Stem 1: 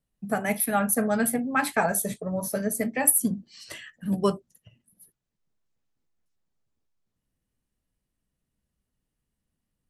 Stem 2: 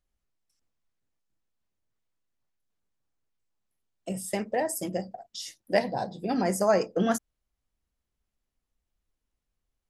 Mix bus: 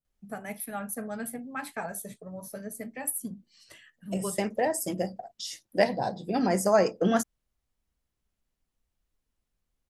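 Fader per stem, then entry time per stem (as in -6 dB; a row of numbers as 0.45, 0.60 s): -11.5, +1.0 dB; 0.00, 0.05 s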